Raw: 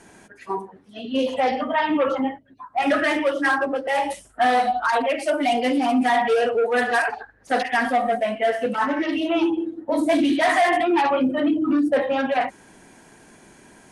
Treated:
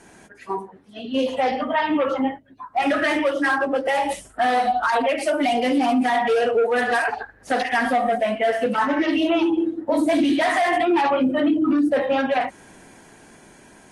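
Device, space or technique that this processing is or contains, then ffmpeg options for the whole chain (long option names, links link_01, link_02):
low-bitrate web radio: -af "dynaudnorm=framelen=660:gausssize=9:maxgain=6dB,alimiter=limit=-12.5dB:level=0:latency=1:release=224" -ar 44100 -c:a aac -b:a 48k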